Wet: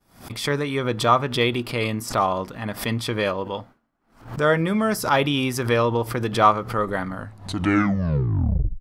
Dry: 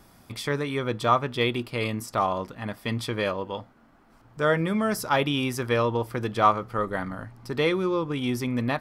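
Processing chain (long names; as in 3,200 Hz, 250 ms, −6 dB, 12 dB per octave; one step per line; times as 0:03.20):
turntable brake at the end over 1.64 s
downward expander −44 dBFS
background raised ahead of every attack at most 130 dB per second
level +3.5 dB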